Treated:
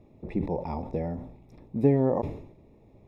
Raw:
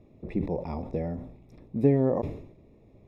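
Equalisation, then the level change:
parametric band 870 Hz +7 dB 0.29 octaves
0.0 dB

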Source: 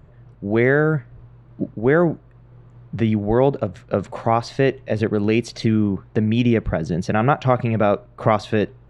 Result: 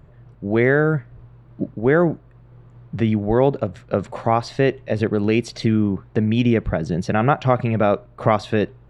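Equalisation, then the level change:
notch filter 6,300 Hz, Q 19
0.0 dB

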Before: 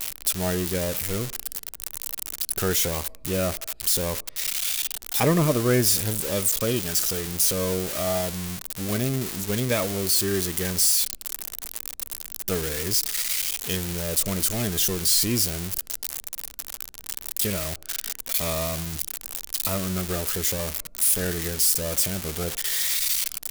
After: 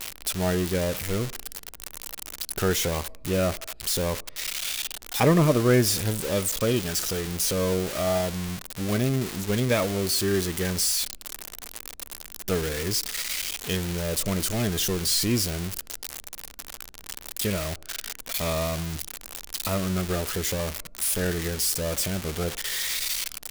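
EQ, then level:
high-shelf EQ 6,300 Hz −9 dB
+1.5 dB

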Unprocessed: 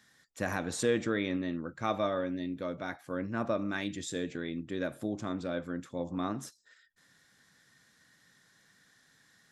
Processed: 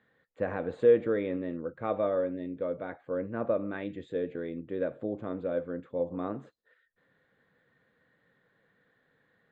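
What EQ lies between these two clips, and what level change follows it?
moving average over 8 samples
high-frequency loss of the air 170 metres
parametric band 490 Hz +12.5 dB 0.57 octaves
−2.5 dB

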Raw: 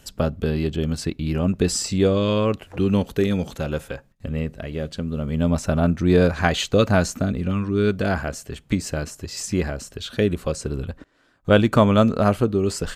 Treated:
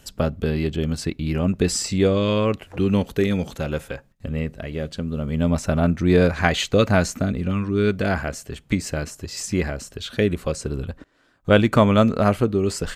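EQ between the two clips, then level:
dynamic equaliser 2,100 Hz, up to +5 dB, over −46 dBFS, Q 3.3
0.0 dB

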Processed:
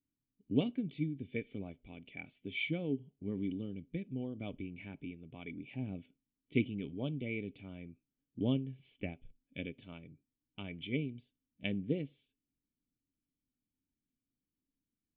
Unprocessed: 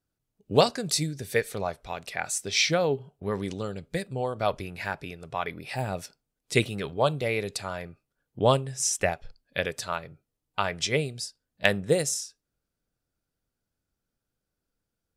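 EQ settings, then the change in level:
formant resonators in series i
high-frequency loss of the air 61 metres
+2.5 dB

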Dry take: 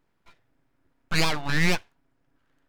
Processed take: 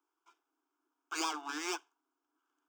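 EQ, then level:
Butterworth high-pass 290 Hz 96 dB per octave
parametric band 2,500 Hz −9.5 dB 0.75 octaves
phaser with its sweep stopped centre 2,800 Hz, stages 8
−3.5 dB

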